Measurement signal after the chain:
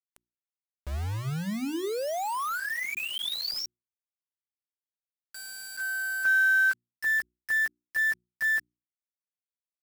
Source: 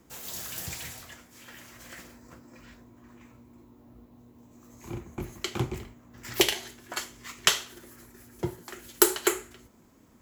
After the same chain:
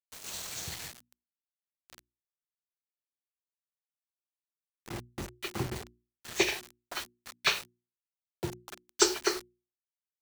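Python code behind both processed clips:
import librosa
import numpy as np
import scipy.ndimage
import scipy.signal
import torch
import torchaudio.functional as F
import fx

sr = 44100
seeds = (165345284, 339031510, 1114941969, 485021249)

y = fx.freq_compress(x, sr, knee_hz=1500.0, ratio=1.5)
y = fx.quant_dither(y, sr, seeds[0], bits=6, dither='none')
y = fx.hum_notches(y, sr, base_hz=60, count=6)
y = F.gain(torch.from_numpy(y), -3.0).numpy()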